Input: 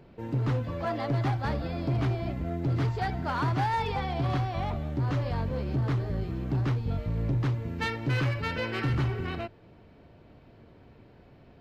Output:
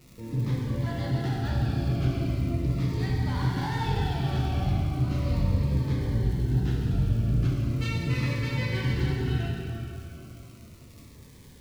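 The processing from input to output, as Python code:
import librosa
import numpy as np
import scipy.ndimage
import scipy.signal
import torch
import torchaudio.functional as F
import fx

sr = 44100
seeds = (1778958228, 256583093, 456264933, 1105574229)

y = fx.peak_eq(x, sr, hz=780.0, db=-8.5, octaves=2.6)
y = fx.dmg_crackle(y, sr, seeds[0], per_s=170.0, level_db=-41.0)
y = fx.rev_plate(y, sr, seeds[1], rt60_s=3.2, hf_ratio=0.75, predelay_ms=0, drr_db=-4.0)
y = fx.notch_cascade(y, sr, direction='falling', hz=0.37)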